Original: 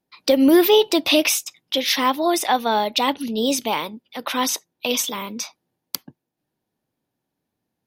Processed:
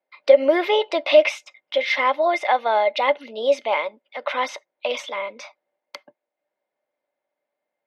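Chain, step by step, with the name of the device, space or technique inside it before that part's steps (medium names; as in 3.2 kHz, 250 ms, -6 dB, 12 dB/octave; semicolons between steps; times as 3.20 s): tin-can telephone (band-pass 640–2400 Hz; small resonant body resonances 580/2100 Hz, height 16 dB, ringing for 50 ms)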